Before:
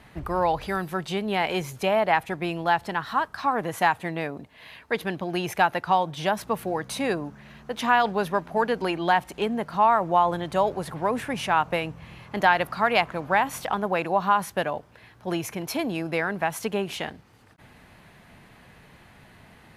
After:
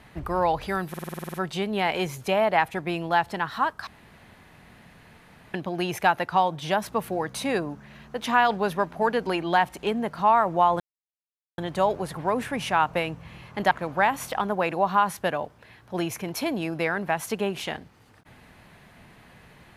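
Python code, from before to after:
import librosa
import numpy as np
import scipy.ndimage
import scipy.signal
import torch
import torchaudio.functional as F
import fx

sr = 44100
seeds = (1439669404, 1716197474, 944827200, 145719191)

y = fx.edit(x, sr, fx.stutter(start_s=0.89, slice_s=0.05, count=10),
    fx.room_tone_fill(start_s=3.42, length_s=1.67),
    fx.insert_silence(at_s=10.35, length_s=0.78),
    fx.cut(start_s=12.48, length_s=0.56), tone=tone)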